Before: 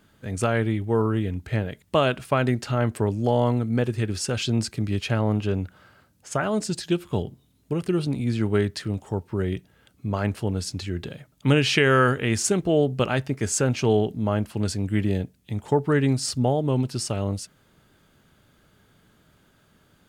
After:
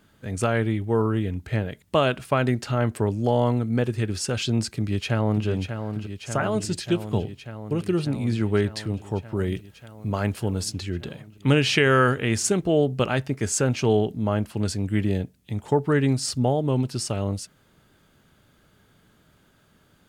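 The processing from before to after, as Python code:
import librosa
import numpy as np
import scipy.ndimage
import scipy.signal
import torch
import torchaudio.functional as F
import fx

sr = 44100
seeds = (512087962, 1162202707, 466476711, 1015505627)

y = fx.echo_throw(x, sr, start_s=4.75, length_s=0.72, ms=590, feedback_pct=80, wet_db=-8.0)
y = fx.high_shelf(y, sr, hz=fx.line((9.35, 5500.0), (10.71, 7600.0)), db=7.0, at=(9.35, 10.71), fade=0.02)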